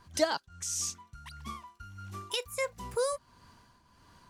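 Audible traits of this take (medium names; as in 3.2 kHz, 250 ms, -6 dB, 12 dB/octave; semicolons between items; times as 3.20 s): tremolo triangle 1.5 Hz, depth 70%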